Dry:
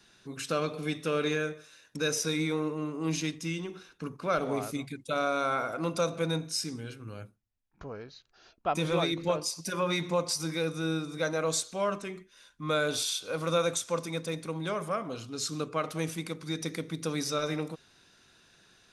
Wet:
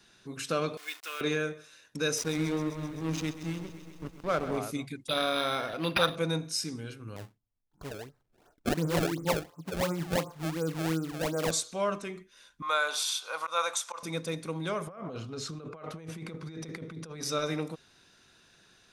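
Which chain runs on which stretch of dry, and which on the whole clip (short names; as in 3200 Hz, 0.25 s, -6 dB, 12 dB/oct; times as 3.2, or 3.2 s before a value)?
0.77–1.21 level-crossing sampler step -40 dBFS + HPF 1400 Hz + comb 2.8 ms, depth 38%
2.18–4.58 backlash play -29.5 dBFS + lo-fi delay 0.13 s, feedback 80%, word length 9-bit, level -13 dB
5.08–6.16 HPF 49 Hz + resonant high shelf 2500 Hz +14 dB, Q 1.5 + decimation joined by straight lines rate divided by 6×
7.16–11.51 LPF 1300 Hz 24 dB/oct + comb 6.9 ms, depth 32% + decimation with a swept rate 26×, swing 160% 2.8 Hz
12.62–14.03 auto swell 0.117 s + resonant high-pass 930 Hz, resonance Q 2.3
14.87–17.23 LPF 1600 Hz 6 dB/oct + notch 290 Hz, Q 7.1 + negative-ratio compressor -41 dBFS
whole clip: dry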